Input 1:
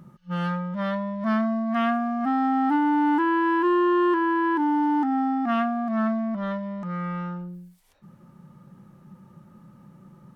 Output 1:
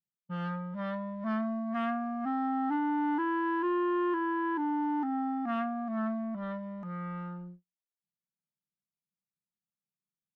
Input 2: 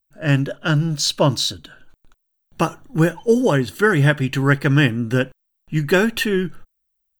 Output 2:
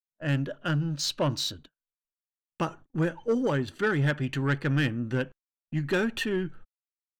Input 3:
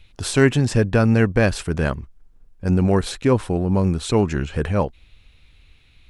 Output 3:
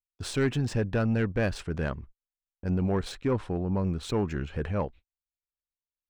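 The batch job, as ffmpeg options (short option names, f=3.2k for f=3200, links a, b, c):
-filter_complex "[0:a]acrossover=split=2100[a][b];[b]adynamicsmooth=sensitivity=5:basefreq=4.4k[c];[a][c]amix=inputs=2:normalize=0,asoftclip=type=tanh:threshold=-10dB,agate=range=-47dB:threshold=-37dB:ratio=16:detection=peak,volume=-8dB"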